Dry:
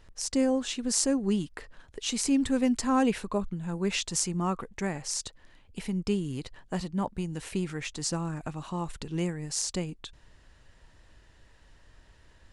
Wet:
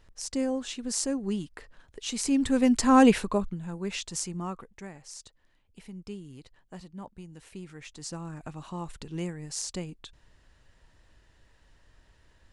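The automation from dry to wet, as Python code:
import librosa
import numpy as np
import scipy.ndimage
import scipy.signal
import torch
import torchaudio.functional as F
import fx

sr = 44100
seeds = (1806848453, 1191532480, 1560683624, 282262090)

y = fx.gain(x, sr, db=fx.line((2.01, -3.5), (3.07, 7.5), (3.77, -4.5), (4.37, -4.5), (4.91, -12.0), (7.54, -12.0), (8.57, -3.5)))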